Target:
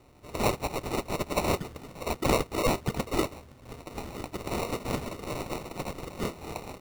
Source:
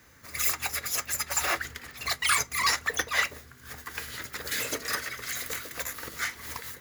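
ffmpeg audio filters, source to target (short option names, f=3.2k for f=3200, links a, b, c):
-af "acrusher=samples=27:mix=1:aa=0.000001"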